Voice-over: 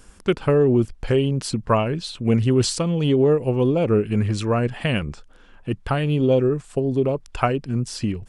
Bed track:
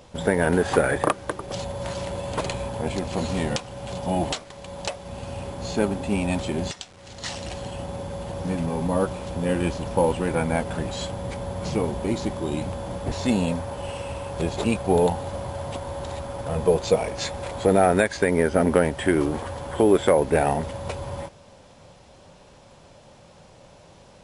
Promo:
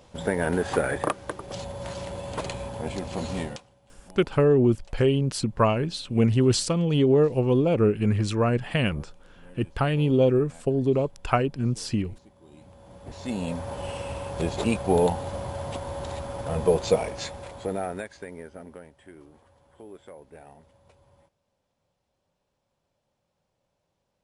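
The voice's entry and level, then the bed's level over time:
3.90 s, -2.0 dB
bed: 3.41 s -4.5 dB
3.81 s -27.5 dB
12.33 s -27.5 dB
13.71 s -1.5 dB
16.95 s -1.5 dB
18.94 s -27.5 dB

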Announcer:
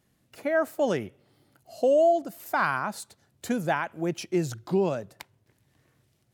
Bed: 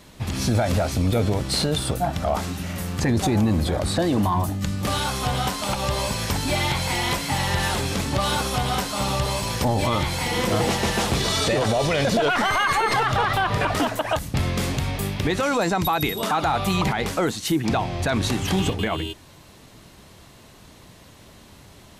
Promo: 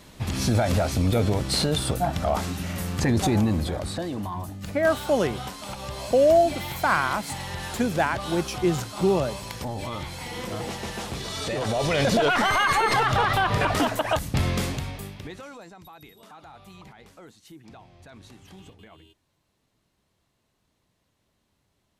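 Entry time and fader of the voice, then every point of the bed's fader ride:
4.30 s, +3.0 dB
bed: 3.35 s -1 dB
4.17 s -10.5 dB
11.30 s -10.5 dB
12.01 s -0.5 dB
14.54 s -0.5 dB
15.74 s -25 dB

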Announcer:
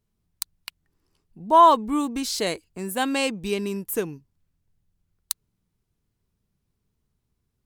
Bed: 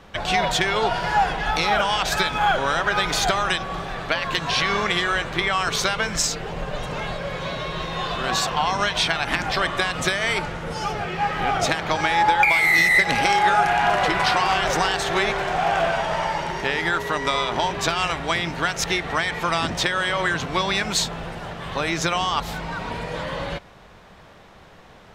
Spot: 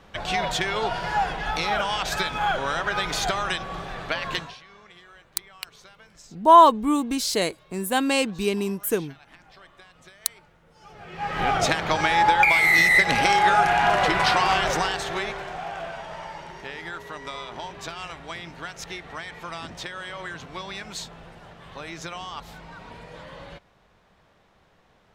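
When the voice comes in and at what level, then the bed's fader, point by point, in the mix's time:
4.95 s, +2.0 dB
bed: 4.39 s -4.5 dB
4.60 s -28 dB
10.73 s -28 dB
11.40 s -0.5 dB
14.55 s -0.5 dB
15.73 s -13 dB

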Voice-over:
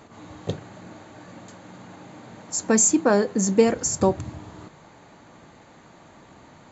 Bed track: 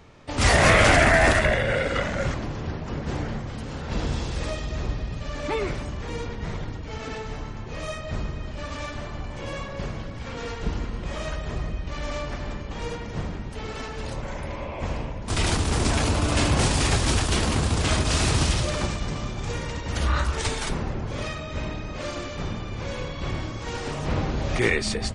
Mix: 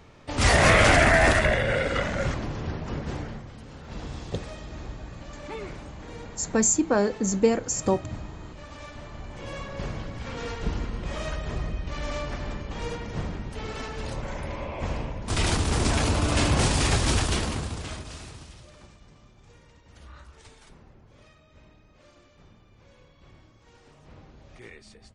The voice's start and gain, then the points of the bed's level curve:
3.85 s, -3.5 dB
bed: 2.95 s -1 dB
3.54 s -10 dB
8.71 s -10 dB
9.90 s -1 dB
17.25 s -1 dB
18.46 s -24 dB

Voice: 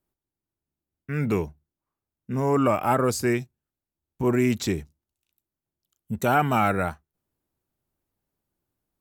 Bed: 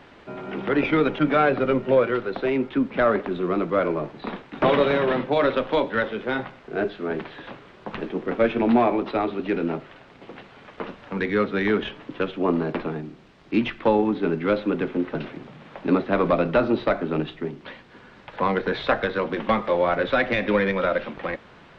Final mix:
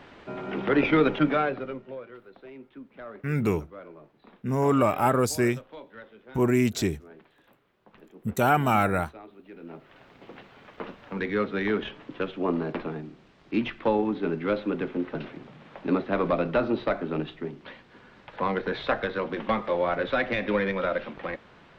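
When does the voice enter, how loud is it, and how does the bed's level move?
2.15 s, -0.5 dB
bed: 1.20 s -0.5 dB
2.01 s -22 dB
9.53 s -22 dB
10.02 s -4.5 dB

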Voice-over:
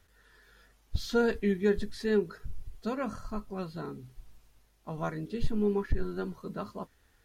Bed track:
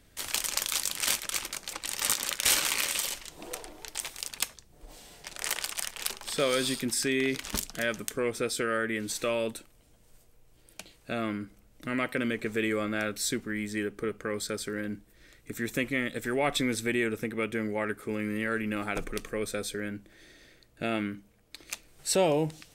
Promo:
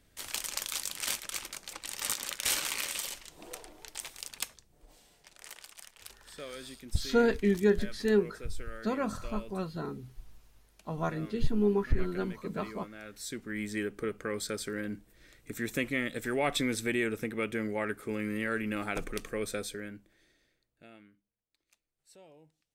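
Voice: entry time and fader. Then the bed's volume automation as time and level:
6.00 s, +1.5 dB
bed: 4.56 s -5.5 dB
5.48 s -16.5 dB
12.99 s -16.5 dB
13.61 s -2 dB
19.56 s -2 dB
21.39 s -31.5 dB

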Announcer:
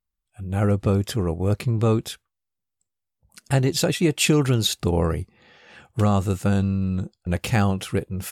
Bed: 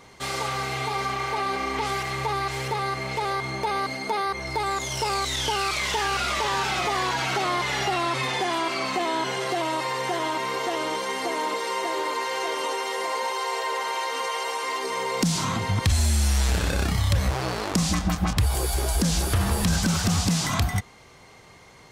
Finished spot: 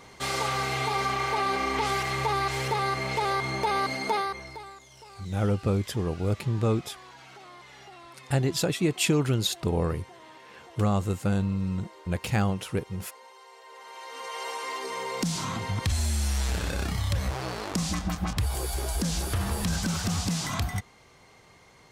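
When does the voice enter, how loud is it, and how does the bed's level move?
4.80 s, -5.0 dB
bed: 4.15 s 0 dB
4.84 s -23 dB
13.60 s -23 dB
14.45 s -5.5 dB

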